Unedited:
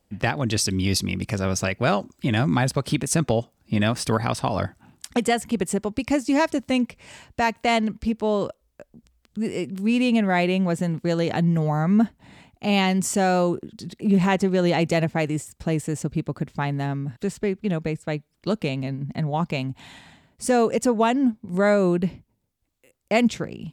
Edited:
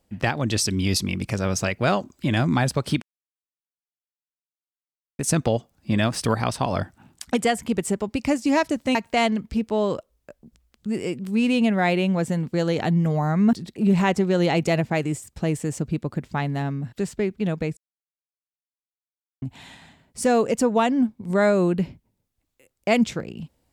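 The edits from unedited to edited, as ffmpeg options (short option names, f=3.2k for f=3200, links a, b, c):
-filter_complex "[0:a]asplit=6[a][b][c][d][e][f];[a]atrim=end=3.02,asetpts=PTS-STARTPTS,afade=t=out:st=3.016:d=0.004:c=hsin,apad=pad_dur=2.17[g];[b]atrim=start=3.02:end=6.782,asetpts=PTS-STARTPTS,afade=t=in:d=0.004:c=hsin[h];[c]atrim=start=7.458:end=12.042[i];[d]atrim=start=13.768:end=18.01,asetpts=PTS-STARTPTS,afade=t=out:st=4.238:d=0.004:c=hsin[j];[e]atrim=start=18.01:end=19.66,asetpts=PTS-STARTPTS,volume=0[k];[f]atrim=start=19.66,asetpts=PTS-STARTPTS,afade=t=in:d=0.004:c=hsin[l];[g][h]concat=n=2:v=0:a=1[m];[m][i]acrossfade=d=0.004:c1=hsin:c2=hsin[n];[j][k][l]concat=n=3:v=0:a=1[o];[n][o]acrossfade=d=0.004:c1=hsin:c2=hsin"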